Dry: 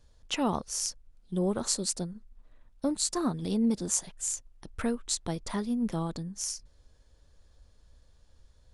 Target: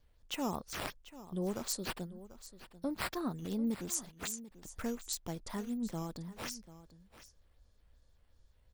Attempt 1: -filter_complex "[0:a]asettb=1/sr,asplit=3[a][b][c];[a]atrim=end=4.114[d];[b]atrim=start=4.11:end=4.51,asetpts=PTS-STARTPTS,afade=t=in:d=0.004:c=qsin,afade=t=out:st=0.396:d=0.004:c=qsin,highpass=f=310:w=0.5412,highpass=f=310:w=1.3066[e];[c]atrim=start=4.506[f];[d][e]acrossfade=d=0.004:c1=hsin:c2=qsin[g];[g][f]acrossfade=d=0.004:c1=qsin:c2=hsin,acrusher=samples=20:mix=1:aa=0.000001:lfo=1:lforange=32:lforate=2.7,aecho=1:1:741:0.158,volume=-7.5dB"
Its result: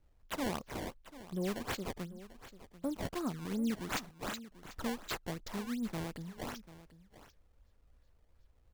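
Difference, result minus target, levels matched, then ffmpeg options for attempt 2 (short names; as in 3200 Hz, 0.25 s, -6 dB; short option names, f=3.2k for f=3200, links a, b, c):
decimation with a swept rate: distortion +6 dB
-filter_complex "[0:a]asettb=1/sr,asplit=3[a][b][c];[a]atrim=end=4.114[d];[b]atrim=start=4.11:end=4.51,asetpts=PTS-STARTPTS,afade=t=in:d=0.004:c=qsin,afade=t=out:st=0.396:d=0.004:c=qsin,highpass=f=310:w=0.5412,highpass=f=310:w=1.3066[e];[c]atrim=start=4.506[f];[d][e]acrossfade=d=0.004:c1=hsin:c2=qsin[g];[g][f]acrossfade=d=0.004:c1=qsin:c2=hsin,acrusher=samples=4:mix=1:aa=0.000001:lfo=1:lforange=6.4:lforate=2.7,aecho=1:1:741:0.158,volume=-7.5dB"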